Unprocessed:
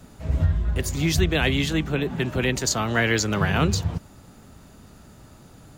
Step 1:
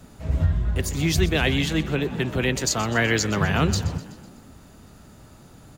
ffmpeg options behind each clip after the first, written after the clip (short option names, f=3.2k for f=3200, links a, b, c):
-filter_complex "[0:a]asplit=6[a][b][c][d][e][f];[b]adelay=125,afreqshift=35,volume=-16dB[g];[c]adelay=250,afreqshift=70,volume=-20.9dB[h];[d]adelay=375,afreqshift=105,volume=-25.8dB[i];[e]adelay=500,afreqshift=140,volume=-30.6dB[j];[f]adelay=625,afreqshift=175,volume=-35.5dB[k];[a][g][h][i][j][k]amix=inputs=6:normalize=0"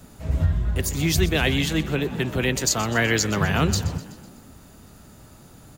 -af "highshelf=f=9.1k:g=8"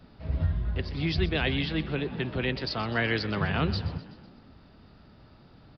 -af "aresample=11025,aresample=44100,volume=-6dB"